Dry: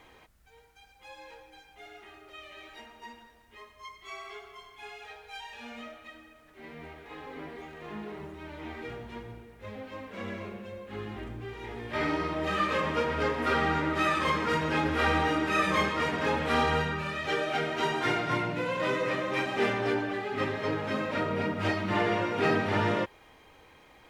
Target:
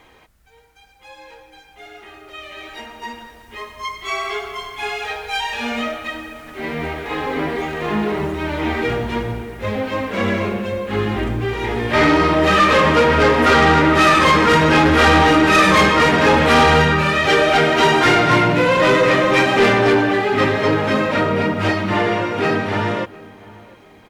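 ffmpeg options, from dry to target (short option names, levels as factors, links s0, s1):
-filter_complex "[0:a]dynaudnorm=f=210:g=31:m=5.31,asoftclip=type=tanh:threshold=0.211,asplit=2[s0][s1];[s1]adelay=704,lowpass=f=1600:p=1,volume=0.0891,asplit=2[s2][s3];[s3]adelay=704,lowpass=f=1600:p=1,volume=0.37,asplit=2[s4][s5];[s5]adelay=704,lowpass=f=1600:p=1,volume=0.37[s6];[s2][s4][s6]amix=inputs=3:normalize=0[s7];[s0][s7]amix=inputs=2:normalize=0,volume=2"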